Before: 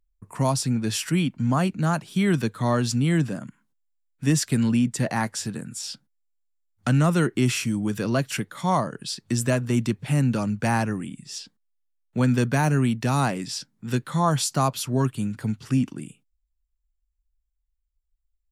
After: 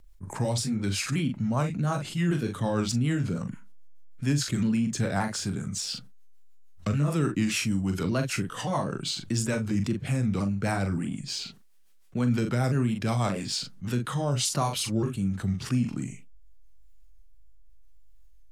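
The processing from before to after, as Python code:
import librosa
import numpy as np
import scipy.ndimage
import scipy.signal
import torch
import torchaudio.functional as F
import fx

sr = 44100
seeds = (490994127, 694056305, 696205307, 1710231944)

p1 = fx.pitch_ramps(x, sr, semitones=-3.0, every_ms=578)
p2 = fx.rotary_switch(p1, sr, hz=6.7, then_hz=0.85, switch_at_s=13.58)
p3 = fx.backlash(p2, sr, play_db=-36.5)
p4 = p2 + (p3 * 10.0 ** (-9.5 / 20.0))
p5 = fx.doubler(p4, sr, ms=41.0, db=-9.0)
p6 = fx.env_flatten(p5, sr, amount_pct=50)
y = p6 * 10.0 ** (-7.5 / 20.0)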